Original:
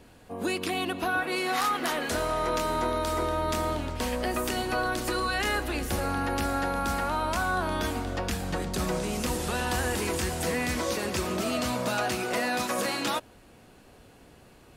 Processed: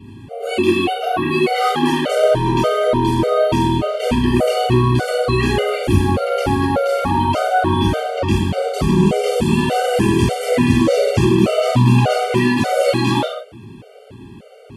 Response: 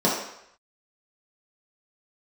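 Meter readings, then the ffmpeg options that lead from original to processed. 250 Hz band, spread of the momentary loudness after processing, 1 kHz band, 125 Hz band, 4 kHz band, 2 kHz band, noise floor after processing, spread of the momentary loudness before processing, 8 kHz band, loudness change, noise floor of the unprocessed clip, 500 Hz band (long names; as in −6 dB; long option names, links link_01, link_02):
+15.0 dB, 5 LU, +10.0 dB, +17.5 dB, +8.0 dB, +5.5 dB, −40 dBFS, 3 LU, +2.0 dB, +12.0 dB, −54 dBFS, +14.0 dB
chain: -filter_complex "[1:a]atrim=start_sample=2205,atrim=end_sample=6615,asetrate=25578,aresample=44100[link_01];[0:a][link_01]afir=irnorm=-1:irlink=0,afftfilt=real='re*gt(sin(2*PI*1.7*pts/sr)*(1-2*mod(floor(b*sr/1024/390),2)),0)':imag='im*gt(sin(2*PI*1.7*pts/sr)*(1-2*mod(floor(b*sr/1024/390),2)),0)':win_size=1024:overlap=0.75,volume=-6dB"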